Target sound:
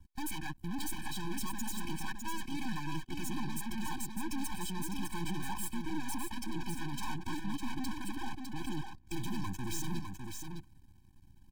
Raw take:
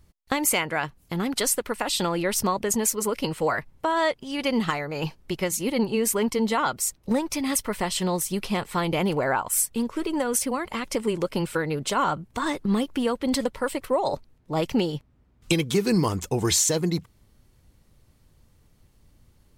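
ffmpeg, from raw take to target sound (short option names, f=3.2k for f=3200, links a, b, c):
-filter_complex "[0:a]highshelf=f=3k:g=-4.5,aeval=exprs='max(val(0),0)':c=same,highshelf=f=9.4k:g=2,atempo=1.7,volume=32dB,asoftclip=hard,volume=-32dB,asplit=2[a][b];[b]aecho=0:1:605:0.531[c];[a][c]amix=inputs=2:normalize=0,afftfilt=real='re*eq(mod(floor(b*sr/1024/370),2),0)':imag='im*eq(mod(floor(b*sr/1024/370),2),0)':win_size=1024:overlap=0.75,volume=1.5dB"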